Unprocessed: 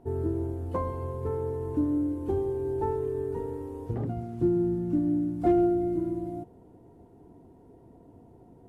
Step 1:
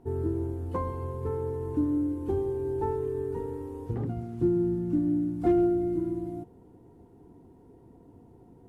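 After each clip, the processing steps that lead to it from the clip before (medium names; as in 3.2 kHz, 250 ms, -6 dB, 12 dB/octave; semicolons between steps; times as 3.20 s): peaking EQ 630 Hz -9 dB 0.29 oct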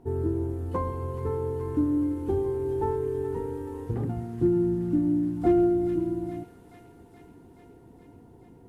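feedback echo behind a high-pass 425 ms, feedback 73%, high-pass 1.8 kHz, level -5 dB; trim +2 dB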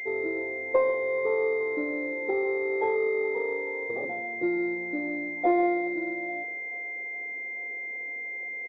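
resonant high-pass 560 Hz, resonance Q 4.9; delay 141 ms -13.5 dB; class-D stage that switches slowly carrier 2.1 kHz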